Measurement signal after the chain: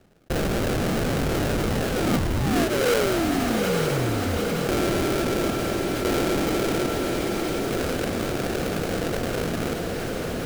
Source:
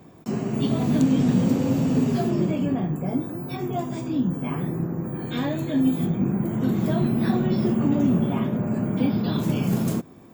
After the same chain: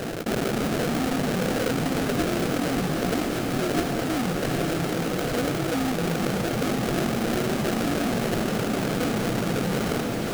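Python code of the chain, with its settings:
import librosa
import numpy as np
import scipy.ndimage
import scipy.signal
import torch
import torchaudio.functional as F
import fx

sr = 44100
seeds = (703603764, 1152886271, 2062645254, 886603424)

p1 = fx.notch(x, sr, hz=620.0, q=12.0)
p2 = fx.dereverb_blind(p1, sr, rt60_s=1.9)
p3 = scipy.signal.sosfilt(scipy.signal.butter(2, 100.0, 'highpass', fs=sr, output='sos'), p2)
p4 = fx.peak_eq(p3, sr, hz=1600.0, db=-11.5, octaves=0.29)
p5 = fx.hum_notches(p4, sr, base_hz=50, count=5)
p6 = np.clip(p5, -10.0 ** (-26.5 / 20.0), 10.0 ** (-26.5 / 20.0))
p7 = fx.small_body(p6, sr, hz=(480.0, 690.0, 1200.0), ring_ms=45, db=14)
p8 = fx.sample_hold(p7, sr, seeds[0], rate_hz=1000.0, jitter_pct=20)
p9 = p8 + fx.echo_diffused(p8, sr, ms=863, feedback_pct=46, wet_db=-8, dry=0)
p10 = fx.env_flatten(p9, sr, amount_pct=70)
y = F.gain(torch.from_numpy(p10), -6.5).numpy()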